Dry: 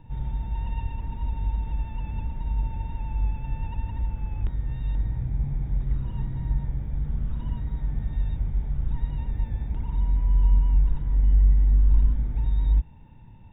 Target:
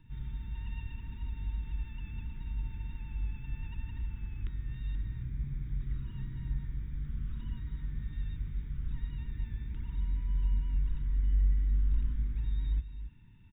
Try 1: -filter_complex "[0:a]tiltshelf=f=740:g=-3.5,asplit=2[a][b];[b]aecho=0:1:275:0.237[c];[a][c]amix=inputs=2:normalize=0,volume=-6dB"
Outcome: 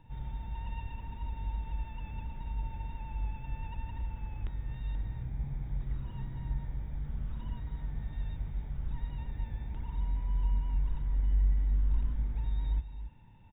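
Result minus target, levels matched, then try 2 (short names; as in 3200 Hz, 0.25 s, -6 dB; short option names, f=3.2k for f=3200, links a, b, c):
500 Hz band +7.5 dB
-filter_complex "[0:a]asuperstop=centerf=670:order=4:qfactor=0.75,tiltshelf=f=740:g=-3.5,asplit=2[a][b];[b]aecho=0:1:275:0.237[c];[a][c]amix=inputs=2:normalize=0,volume=-6dB"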